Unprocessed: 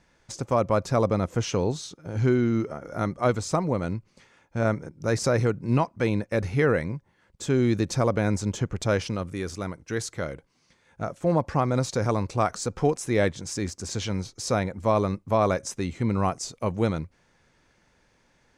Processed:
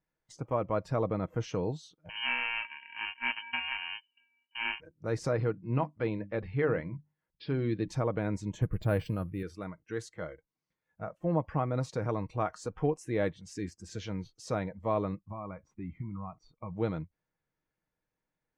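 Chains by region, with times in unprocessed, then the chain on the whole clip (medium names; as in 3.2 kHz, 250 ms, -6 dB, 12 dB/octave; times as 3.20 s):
2.09–4.80 s: sorted samples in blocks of 64 samples + frequency inversion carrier 3 kHz
5.35–7.88 s: careless resampling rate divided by 4×, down none, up filtered + hum notches 50/100/150/200/250/300 Hz
8.62–9.43 s: bass shelf 140 Hz +11 dB + careless resampling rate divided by 4×, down filtered, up hold + loudspeaker Doppler distortion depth 0.16 ms
15.30–16.73 s: comb 0.9 ms, depth 44% + compression 10:1, threshold -25 dBFS + tape spacing loss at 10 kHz 26 dB
whole clip: spectral noise reduction 16 dB; treble shelf 3.3 kHz -10 dB; comb 6.4 ms, depth 35%; trim -7.5 dB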